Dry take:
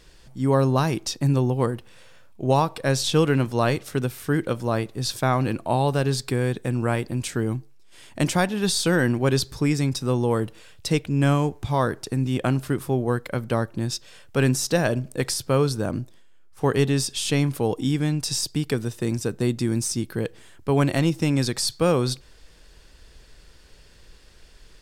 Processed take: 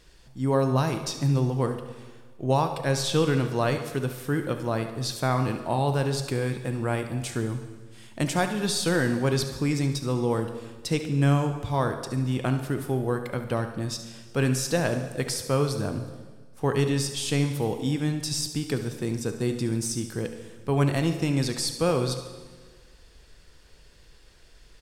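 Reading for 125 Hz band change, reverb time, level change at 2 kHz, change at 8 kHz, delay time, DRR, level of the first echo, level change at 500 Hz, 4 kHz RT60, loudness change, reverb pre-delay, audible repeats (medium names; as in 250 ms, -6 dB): -2.5 dB, 1.5 s, -3.0 dB, -3.0 dB, 71 ms, 6.5 dB, -12.5 dB, -3.0 dB, 1.4 s, -3.0 dB, 3 ms, 2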